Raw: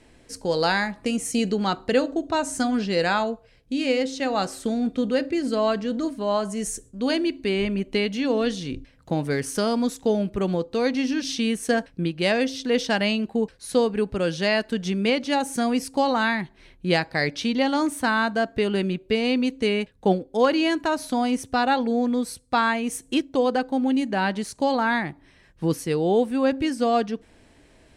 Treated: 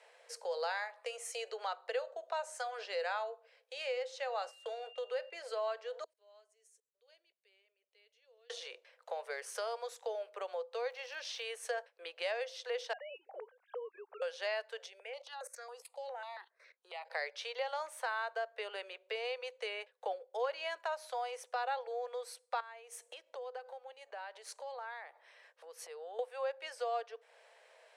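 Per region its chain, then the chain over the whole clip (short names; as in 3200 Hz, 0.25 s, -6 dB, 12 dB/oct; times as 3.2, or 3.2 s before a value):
4.31–5.31 gate -36 dBFS, range -14 dB + whine 2800 Hz -47 dBFS
6.04–8.5 passive tone stack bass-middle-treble 10-0-1 + level quantiser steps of 18 dB
10.8–11.44 high shelf 8500 Hz -10.5 dB + crackle 160/s -38 dBFS
12.93–14.22 sine-wave speech + LPF 1300 Hz 6 dB/oct + compressor 3:1, threshold -36 dBFS
14.86–17.1 level quantiser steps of 17 dB + step phaser 7.3 Hz 310–3100 Hz
22.6–26.19 tone controls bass +11 dB, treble +1 dB + compressor 16:1, threshold -31 dBFS
whole clip: steep high-pass 470 Hz 72 dB/oct; high shelf 4100 Hz -9.5 dB; compressor 2:1, threshold -42 dBFS; gain -1.5 dB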